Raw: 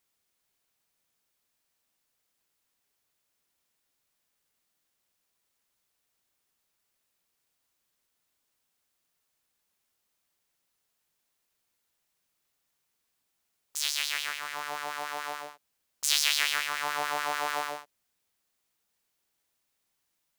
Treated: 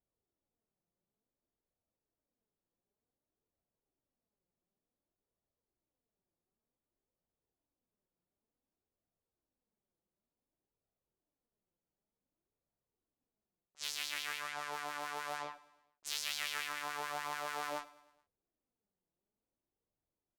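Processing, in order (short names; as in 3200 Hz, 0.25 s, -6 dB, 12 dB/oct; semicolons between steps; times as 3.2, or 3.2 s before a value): low-pass opened by the level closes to 490 Hz, open at -30.5 dBFS; reverse; compressor 5:1, threshold -37 dBFS, peak gain reduction 17 dB; reverse; flange 0.55 Hz, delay 1.2 ms, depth 4.8 ms, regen +46%; added harmonics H 3 -19 dB, 6 -33 dB, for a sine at -26.5 dBFS; feedback echo 0.106 s, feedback 55%, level -20 dB; gain +8 dB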